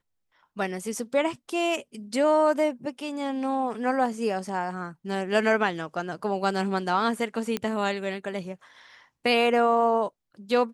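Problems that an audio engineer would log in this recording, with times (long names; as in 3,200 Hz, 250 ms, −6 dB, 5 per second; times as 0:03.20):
0:07.57: click −13 dBFS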